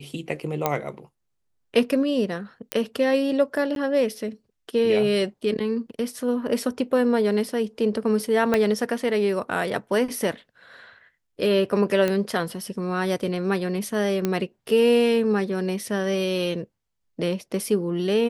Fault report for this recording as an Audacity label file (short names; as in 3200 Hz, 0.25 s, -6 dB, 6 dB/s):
0.660000	0.660000	pop -7 dBFS
2.720000	2.720000	pop -6 dBFS
3.750000	3.760000	gap 12 ms
8.540000	8.540000	pop -8 dBFS
12.080000	12.080000	pop -11 dBFS
14.250000	14.250000	pop -10 dBFS